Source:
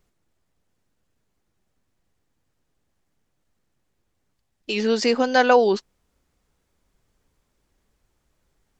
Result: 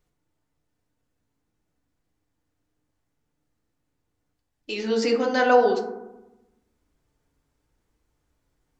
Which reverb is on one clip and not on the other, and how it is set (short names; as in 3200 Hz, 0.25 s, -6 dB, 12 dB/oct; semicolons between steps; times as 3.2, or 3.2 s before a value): FDN reverb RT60 0.98 s, low-frequency decay 1.35×, high-frequency decay 0.3×, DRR 1 dB; gain -6 dB